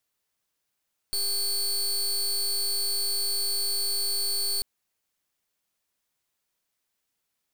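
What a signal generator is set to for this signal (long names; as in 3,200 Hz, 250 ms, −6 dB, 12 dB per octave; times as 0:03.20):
pulse wave 4,450 Hz, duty 26% −27 dBFS 3.49 s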